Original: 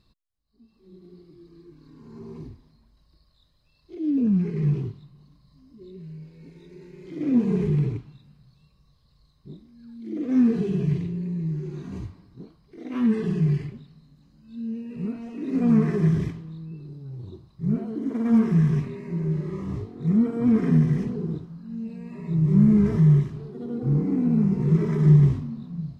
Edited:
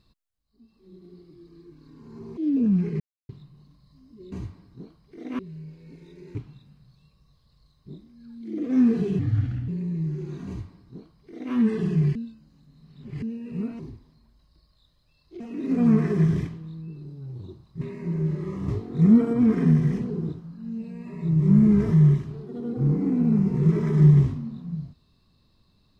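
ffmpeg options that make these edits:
ffmpeg -i in.wav -filter_complex "[0:a]asplit=16[link_01][link_02][link_03][link_04][link_05][link_06][link_07][link_08][link_09][link_10][link_11][link_12][link_13][link_14][link_15][link_16];[link_01]atrim=end=2.372[link_17];[link_02]atrim=start=3.978:end=4.61,asetpts=PTS-STARTPTS,afade=type=out:start_time=0.628:duration=0.004:curve=hsin[link_18];[link_03]atrim=start=4.61:end=4.9,asetpts=PTS-STARTPTS,volume=0[link_19];[link_04]atrim=start=4.9:end=5.932,asetpts=PTS-STARTPTS,afade=type=in:duration=0.004:curve=hsin[link_20];[link_05]atrim=start=11.918:end=12.992[link_21];[link_06]atrim=start=5.928:end=6.892[link_22];[link_07]atrim=start=7.938:end=10.784[link_23];[link_08]atrim=start=10.78:end=11.13,asetpts=PTS-STARTPTS,asetrate=31311,aresample=44100,atrim=end_sample=21739,asetpts=PTS-STARTPTS[link_24];[link_09]atrim=start=11.126:end=13.602[link_25];[link_10]atrim=start=13.598:end=14.672,asetpts=PTS-STARTPTS,areverse[link_26];[link_11]atrim=start=14.668:end=15.242[link_27];[link_12]atrim=start=2.368:end=3.982[link_28];[link_13]atrim=start=15.238:end=17.652[link_29];[link_14]atrim=start=18.868:end=19.742[link_30];[link_15]atrim=start=19.738:end=20.392,asetpts=PTS-STARTPTS,volume=4.5dB[link_31];[link_16]atrim=start=20.388[link_32];[link_18][link_19][link_20]concat=n=3:v=0:a=1[link_33];[link_17][link_33]acrossfade=duration=0.004:curve1=hsin:curve2=hsin[link_34];[link_34][link_21]acrossfade=duration=0.004:curve1=hsin:curve2=hsin[link_35];[link_35][link_22]acrossfade=duration=0.004:curve1=hsin:curve2=hsin[link_36];[link_36][link_23]acrossfade=duration=0.004:curve1=hsin:curve2=hsin[link_37];[link_37][link_24]acrossfade=duration=0.004:curve1=hsin:curve2=hsin[link_38];[link_38][link_25]acrossfade=duration=0.004:curve1=hsin:curve2=hsin[link_39];[link_39][link_26]acrossfade=duration=0.004:curve1=hsin:curve2=hsin[link_40];[link_40][link_27]acrossfade=duration=0.004:curve1=hsin:curve2=hsin[link_41];[link_41][link_28]acrossfade=duration=0.004:curve1=hsin:curve2=hsin[link_42];[link_42][link_29]acrossfade=duration=0.004:curve1=hsin:curve2=hsin[link_43];[link_43][link_30]acrossfade=duration=0.004:curve1=hsin:curve2=hsin[link_44];[link_44][link_31]acrossfade=duration=0.004:curve1=hsin:curve2=hsin[link_45];[link_45][link_32]acrossfade=duration=0.004:curve1=hsin:curve2=hsin" out.wav

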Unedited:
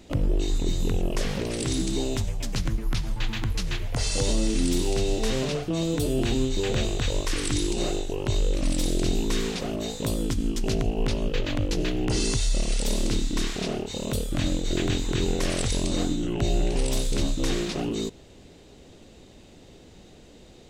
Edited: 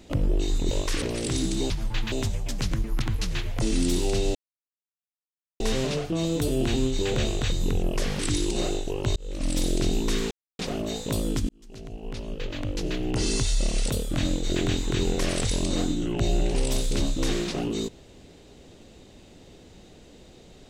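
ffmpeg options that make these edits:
ffmpeg -i in.wav -filter_complex "[0:a]asplit=14[link_01][link_02][link_03][link_04][link_05][link_06][link_07][link_08][link_09][link_10][link_11][link_12][link_13][link_14];[link_01]atrim=end=0.712[link_15];[link_02]atrim=start=7.098:end=7.412[link_16];[link_03]atrim=start=1.378:end=2.062[link_17];[link_04]atrim=start=2.958:end=3.382[link_18];[link_05]atrim=start=2.058:end=2.962[link_19];[link_06]atrim=start=3.378:end=3.982[link_20];[link_07]atrim=start=4.448:end=5.18,asetpts=PTS-STARTPTS,afade=type=out:start_time=0.728:duration=0.004:curve=hsin,apad=pad_dur=1.25[link_21];[link_08]atrim=start=5.18:end=7.102,asetpts=PTS-STARTPTS,afade=type=in:duration=0.004:curve=hsin[link_22];[link_09]atrim=start=0.708:end=1.382[link_23];[link_10]atrim=start=7.408:end=8.38,asetpts=PTS-STARTPTS,afade=type=out:start_time=0.968:duration=0.004:curve=hsin[link_24];[link_11]atrim=start=8.38:end=9.53,asetpts=PTS-STARTPTS,afade=type=in:duration=0.4,afade=type=out:start_time=1.146:duration=0.004:curve=hsin,apad=pad_dur=0.28[link_25];[link_12]atrim=start=9.53:end=10.43,asetpts=PTS-STARTPTS,afade=type=in:duration=0.004:curve=hsin,afade=type=out:start_time=0.896:duration=0.004:curve=hsin[link_26];[link_13]atrim=start=10.43:end=12.842,asetpts=PTS-STARTPTS,afade=type=in:duration=1.91[link_27];[link_14]atrim=start=14.108[link_28];[link_15][link_16]acrossfade=duration=0.004:curve1=hsin:curve2=hsin[link_29];[link_29][link_17]acrossfade=duration=0.004:curve1=hsin:curve2=hsin[link_30];[link_30][link_18]acrossfade=duration=0.004:curve1=hsin:curve2=hsin[link_31];[link_31][link_19]acrossfade=duration=0.004:curve1=hsin:curve2=hsin[link_32];[link_32][link_20]acrossfade=duration=0.004:curve1=hsin:curve2=hsin[link_33];[link_21][link_22]concat=n=2:v=0:a=1[link_34];[link_33][link_34]acrossfade=duration=0.004:curve1=hsin:curve2=hsin[link_35];[link_35][link_23]acrossfade=duration=0.004:curve1=hsin:curve2=hsin[link_36];[link_24][link_25][link_26][link_27]concat=n=4:v=0:a=1[link_37];[link_36][link_37]acrossfade=duration=0.004:curve1=hsin:curve2=hsin[link_38];[link_38][link_28]acrossfade=duration=0.004:curve1=hsin:curve2=hsin" out.wav

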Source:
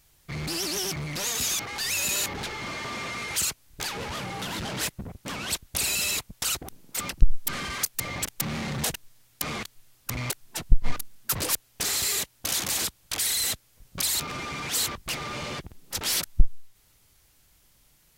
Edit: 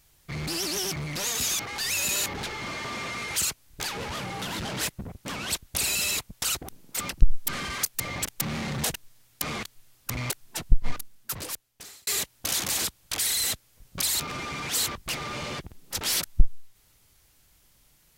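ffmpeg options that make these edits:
ffmpeg -i in.wav -filter_complex "[0:a]asplit=2[link_01][link_02];[link_01]atrim=end=12.07,asetpts=PTS-STARTPTS,afade=type=out:start_time=10.57:duration=1.5[link_03];[link_02]atrim=start=12.07,asetpts=PTS-STARTPTS,afade=type=in:duration=0.004:curve=hsin[link_04];[link_03][link_04]concat=n=2:v=0:a=1" out.wav

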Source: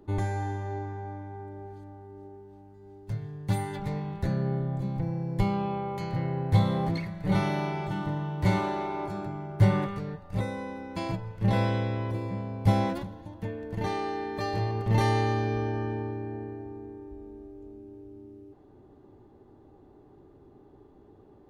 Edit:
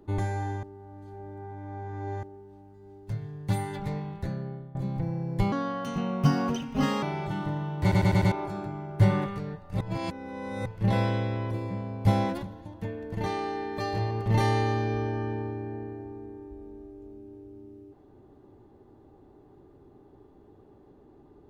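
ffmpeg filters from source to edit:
ffmpeg -i in.wav -filter_complex "[0:a]asplit=13[link_01][link_02][link_03][link_04][link_05][link_06][link_07][link_08][link_09][link_10][link_11][link_12][link_13];[link_01]atrim=end=0.632[link_14];[link_02]atrim=start=0.628:end=2.232,asetpts=PTS-STARTPTS,areverse[link_15];[link_03]atrim=start=2.228:end=4.75,asetpts=PTS-STARTPTS,afade=type=out:start_time=1.672:duration=0.85:silence=0.125893[link_16];[link_04]atrim=start=4.75:end=5.524,asetpts=PTS-STARTPTS,afade=type=in:duration=0.004:curve=hsin:silence=0.125893[link_17];[link_05]atrim=start=5.52:end=7.63,asetpts=PTS-STARTPTS,asetrate=61740,aresample=44100[link_18];[link_06]atrim=start=7.626:end=8.522[link_19];[link_07]atrim=start=8.418:end=8.522[link_20];[link_08]atrim=start=8.418:end=8.522[link_21];[link_09]atrim=start=8.418:end=8.522[link_22];[link_10]atrim=start=8.418:end=8.522[link_23];[link_11]atrim=start=8.918:end=10.412[link_24];[link_12]atrim=start=10.408:end=11.262,asetpts=PTS-STARTPTS,areverse[link_25];[link_13]atrim=start=11.258[link_26];[link_14][link_15]acrossfade=duration=0.004:curve1=hsin:curve2=hsin[link_27];[link_16][link_17]concat=n=2:v=0:a=1[link_28];[link_27][link_28]acrossfade=duration=0.004:curve1=hsin:curve2=hsin[link_29];[link_29][link_18]acrossfade=duration=0.004:curve1=hsin:curve2=hsin[link_30];[link_30][link_19]acrossfade=duration=0.004:curve1=hsin:curve2=hsin[link_31];[link_31][link_20]acrossfade=duration=0.004:curve1=hsin:curve2=hsin[link_32];[link_32][link_21]acrossfade=duration=0.004:curve1=hsin:curve2=hsin[link_33];[link_33][link_22]acrossfade=duration=0.004:curve1=hsin:curve2=hsin[link_34];[link_34][link_23]acrossfade=duration=0.004:curve1=hsin:curve2=hsin[link_35];[link_35][link_24]acrossfade=duration=0.004:curve1=hsin:curve2=hsin[link_36];[link_36][link_25]acrossfade=duration=0.004:curve1=hsin:curve2=hsin[link_37];[link_37][link_26]acrossfade=duration=0.004:curve1=hsin:curve2=hsin" out.wav

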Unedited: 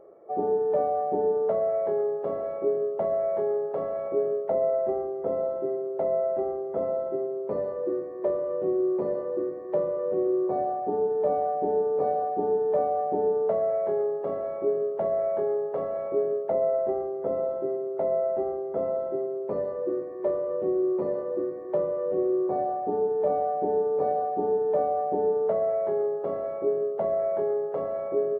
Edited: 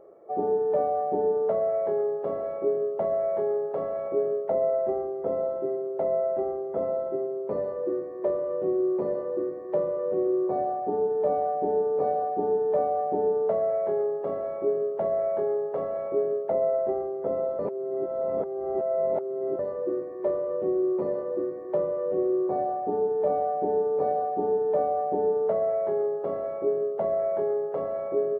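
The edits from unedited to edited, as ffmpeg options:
ffmpeg -i in.wav -filter_complex "[0:a]asplit=3[link_01][link_02][link_03];[link_01]atrim=end=17.592[link_04];[link_02]atrim=start=17.588:end=19.592,asetpts=PTS-STARTPTS,areverse[link_05];[link_03]atrim=start=19.588[link_06];[link_04][link_05]acrossfade=duration=0.004:curve1=hsin:curve2=hsin[link_07];[link_07][link_06]acrossfade=duration=0.004:curve1=hsin:curve2=hsin" out.wav

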